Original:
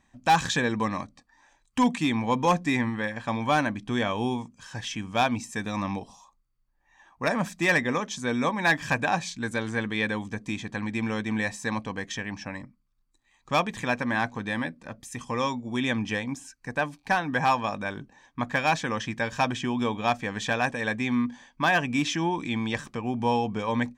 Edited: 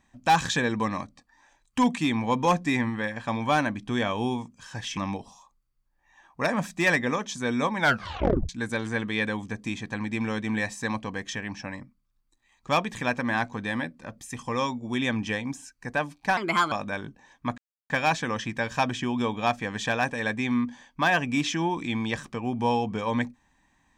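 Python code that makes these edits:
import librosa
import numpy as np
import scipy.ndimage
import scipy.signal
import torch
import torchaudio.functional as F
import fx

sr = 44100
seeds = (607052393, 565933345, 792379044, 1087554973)

y = fx.edit(x, sr, fx.cut(start_s=4.97, length_s=0.82),
    fx.tape_stop(start_s=8.61, length_s=0.7),
    fx.speed_span(start_s=17.19, length_s=0.46, speed=1.32),
    fx.insert_silence(at_s=18.51, length_s=0.32), tone=tone)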